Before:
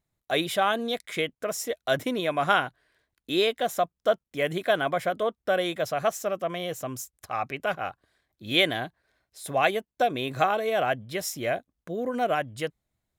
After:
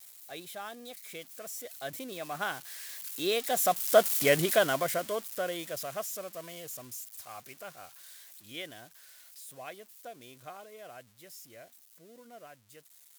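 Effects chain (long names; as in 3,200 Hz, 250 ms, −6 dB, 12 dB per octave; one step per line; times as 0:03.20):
spike at every zero crossing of −22.5 dBFS
source passing by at 0:04.16, 11 m/s, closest 3.4 metres
level +3.5 dB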